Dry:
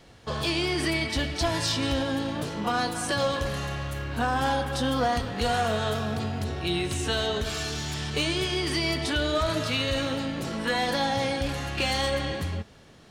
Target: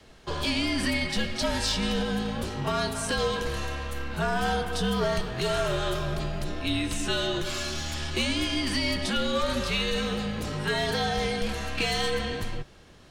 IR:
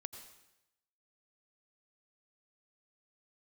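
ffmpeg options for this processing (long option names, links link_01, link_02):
-filter_complex "[0:a]acrossover=split=570|1300[link_01][link_02][link_03];[link_02]aeval=exprs='clip(val(0),-1,0.0106)':channel_layout=same[link_04];[link_01][link_04][link_03]amix=inputs=3:normalize=0,afreqshift=-68"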